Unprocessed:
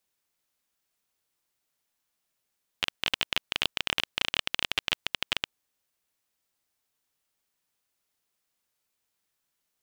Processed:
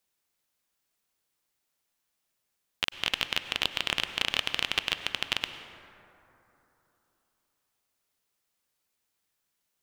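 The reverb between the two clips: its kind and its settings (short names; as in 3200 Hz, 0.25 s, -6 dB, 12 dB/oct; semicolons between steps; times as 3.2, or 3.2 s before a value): plate-style reverb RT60 3.3 s, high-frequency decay 0.35×, pre-delay 85 ms, DRR 9.5 dB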